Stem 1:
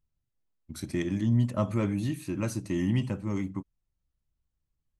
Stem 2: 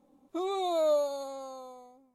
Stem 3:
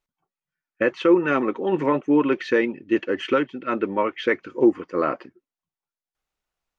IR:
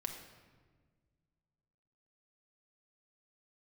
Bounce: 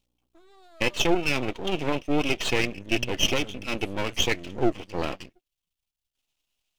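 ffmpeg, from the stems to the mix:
-filter_complex "[0:a]adelay=1650,volume=-9.5dB[link_01];[1:a]acompressor=threshold=-32dB:ratio=1.5,aeval=exprs='val(0)+0.00141*(sin(2*PI*60*n/s)+sin(2*PI*2*60*n/s)/2+sin(2*PI*3*60*n/s)/3+sin(2*PI*4*60*n/s)/4+sin(2*PI*5*60*n/s)/5)':channel_layout=same,volume=-17dB[link_02];[2:a]highshelf=frequency=2100:width_type=q:width=3:gain=11,volume=-2dB[link_03];[link_01][link_02][link_03]amix=inputs=3:normalize=0,aeval=exprs='max(val(0),0)':channel_layout=same"

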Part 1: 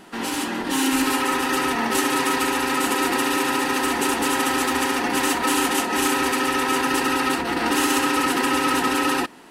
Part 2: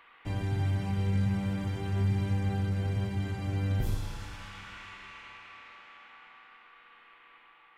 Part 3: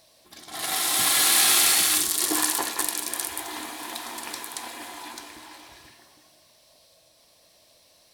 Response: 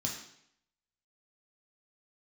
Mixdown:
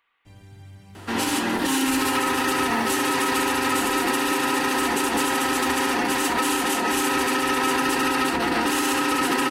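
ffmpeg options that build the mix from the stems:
-filter_complex "[0:a]adelay=950,volume=3dB[link_01];[1:a]highshelf=frequency=3800:gain=11.5,volume=-15.5dB[link_02];[2:a]acompressor=threshold=-25dB:ratio=6,adelay=900,volume=-12.5dB[link_03];[link_01][link_02][link_03]amix=inputs=3:normalize=0,alimiter=limit=-13dB:level=0:latency=1:release=75"

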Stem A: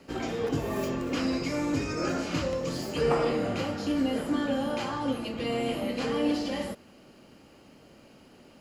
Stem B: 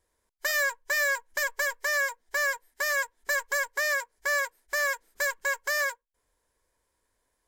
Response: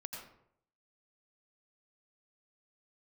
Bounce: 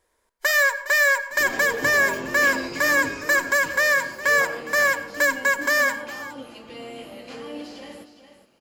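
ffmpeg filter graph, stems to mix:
-filter_complex "[0:a]highshelf=frequency=3900:gain=7.5,adelay=1300,volume=-6.5dB,afade=type=out:start_time=2.89:duration=0.57:silence=0.421697,asplit=2[link_01][link_02];[link_02]volume=-11dB[link_03];[1:a]volume=-0.5dB,asplit=3[link_04][link_05][link_06];[link_05]volume=-6.5dB[link_07];[link_06]volume=-14dB[link_08];[2:a]atrim=start_sample=2205[link_09];[link_07][link_09]afir=irnorm=-1:irlink=0[link_10];[link_03][link_08]amix=inputs=2:normalize=0,aecho=0:1:411:1[link_11];[link_01][link_04][link_10][link_11]amix=inputs=4:normalize=0,bass=frequency=250:gain=-7,treble=frequency=4000:gain=-4,acontrast=66"

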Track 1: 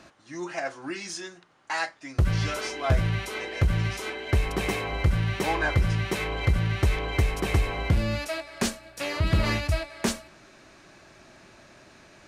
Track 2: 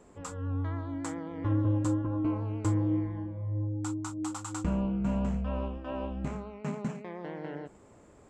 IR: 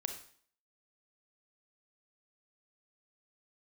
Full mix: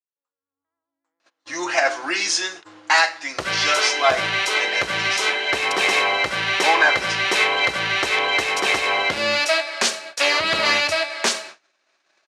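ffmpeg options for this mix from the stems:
-filter_complex "[0:a]highshelf=frequency=3900:gain=10.5,alimiter=limit=-16dB:level=0:latency=1:release=84,adelay=1200,volume=-1dB,asplit=2[link_01][link_02];[link_02]volume=-5dB[link_03];[1:a]volume=-16.5dB[link_04];[2:a]atrim=start_sample=2205[link_05];[link_03][link_05]afir=irnorm=-1:irlink=0[link_06];[link_01][link_04][link_06]amix=inputs=3:normalize=0,agate=range=-33dB:threshold=-43dB:ratio=16:detection=peak,dynaudnorm=framelen=130:gausssize=11:maxgain=12dB,highpass=560,lowpass=5100"

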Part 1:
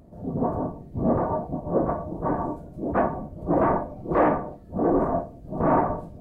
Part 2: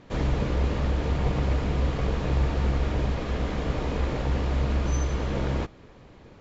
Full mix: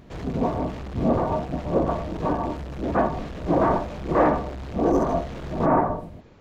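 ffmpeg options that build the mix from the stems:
ffmpeg -i stem1.wav -i stem2.wav -filter_complex "[0:a]volume=1dB[link_01];[1:a]asoftclip=type=hard:threshold=-31.5dB,volume=-2dB[link_02];[link_01][link_02]amix=inputs=2:normalize=0" out.wav

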